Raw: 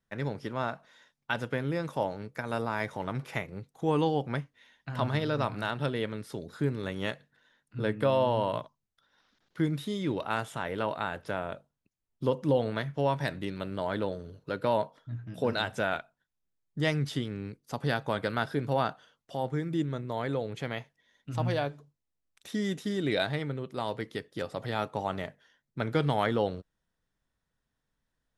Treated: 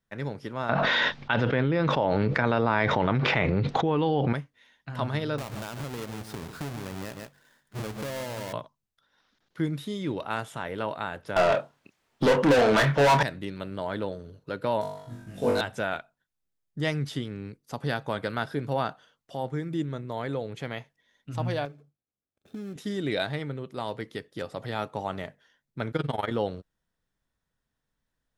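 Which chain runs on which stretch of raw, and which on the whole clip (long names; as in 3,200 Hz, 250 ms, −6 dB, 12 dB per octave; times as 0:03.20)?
0:00.69–0:04.33: low-pass filter 4,100 Hz 24 dB per octave + envelope flattener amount 100%
0:05.38–0:08.53: each half-wave held at its own peak + single-tap delay 145 ms −13.5 dB + downward compressor, threshold −32 dBFS
0:11.36–0:13.23: high-shelf EQ 4,700 Hz −11.5 dB + mid-hump overdrive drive 33 dB, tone 6,000 Hz, clips at −13 dBFS + double-tracking delay 28 ms −8.5 dB
0:14.81–0:15.61: variable-slope delta modulation 64 kbit/s + amplitude modulation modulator 220 Hz, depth 10% + flutter between parallel walls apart 3.5 metres, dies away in 0.76 s
0:21.65–0:22.76: running median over 41 samples + notch comb filter 950 Hz + downward compressor, threshold −33 dBFS
0:25.91–0:26.31: double-tracking delay 12 ms −7 dB + amplitude modulation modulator 21 Hz, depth 80%
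whole clip: no processing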